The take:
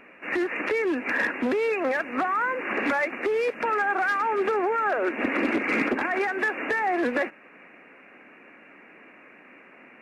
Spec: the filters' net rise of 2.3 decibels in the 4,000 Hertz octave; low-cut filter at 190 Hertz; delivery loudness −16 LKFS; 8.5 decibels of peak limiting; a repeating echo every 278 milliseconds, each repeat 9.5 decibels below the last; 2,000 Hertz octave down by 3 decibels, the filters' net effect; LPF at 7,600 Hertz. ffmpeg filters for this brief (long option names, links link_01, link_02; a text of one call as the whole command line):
ffmpeg -i in.wav -af "highpass=190,lowpass=7600,equalizer=frequency=2000:width_type=o:gain=-5,equalizer=frequency=4000:width_type=o:gain=6,alimiter=limit=-22dB:level=0:latency=1,aecho=1:1:278|556|834|1112:0.335|0.111|0.0365|0.012,volume=13dB" out.wav